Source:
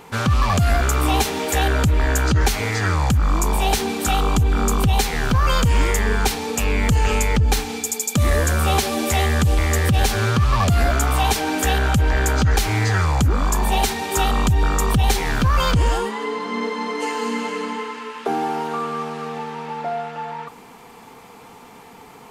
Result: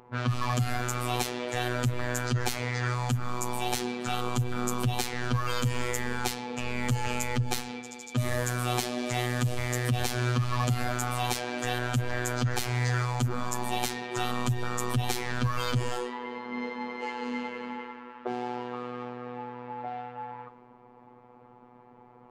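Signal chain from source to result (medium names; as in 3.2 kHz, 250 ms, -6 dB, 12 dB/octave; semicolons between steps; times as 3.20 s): level-controlled noise filter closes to 940 Hz, open at -14 dBFS; robot voice 123 Hz; trim -7 dB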